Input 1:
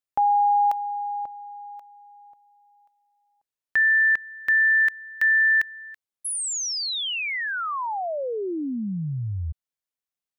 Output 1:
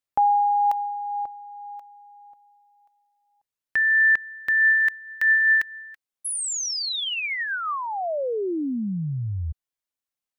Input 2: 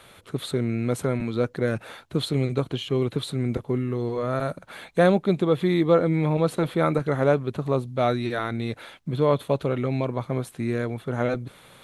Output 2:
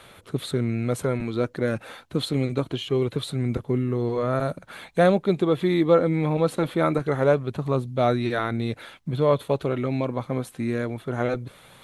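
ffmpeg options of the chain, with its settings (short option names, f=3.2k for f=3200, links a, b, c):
-af "aphaser=in_gain=1:out_gain=1:delay=3.9:decay=0.22:speed=0.24:type=sinusoidal"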